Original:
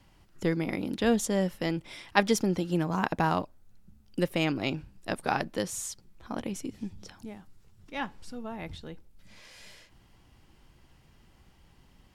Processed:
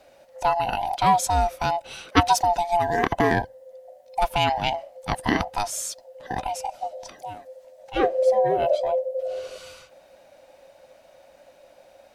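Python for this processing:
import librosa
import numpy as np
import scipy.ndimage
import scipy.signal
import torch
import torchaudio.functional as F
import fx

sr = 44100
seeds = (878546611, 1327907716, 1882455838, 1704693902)

y = fx.band_swap(x, sr, width_hz=500)
y = fx.band_shelf(y, sr, hz=510.0, db=16.0, octaves=1.1, at=(7.96, 9.58))
y = y * librosa.db_to_amplitude(6.0)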